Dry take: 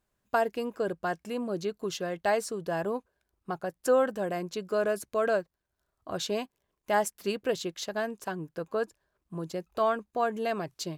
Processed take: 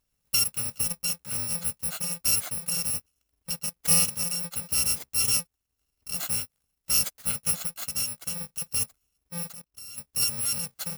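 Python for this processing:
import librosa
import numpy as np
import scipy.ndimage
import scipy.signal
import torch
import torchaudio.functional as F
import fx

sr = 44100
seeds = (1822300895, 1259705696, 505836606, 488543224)

y = fx.bit_reversed(x, sr, seeds[0], block=128)
y = fx.level_steps(y, sr, step_db=22, at=(9.53, 9.98))
y = F.gain(torch.from_numpy(y), 2.0).numpy()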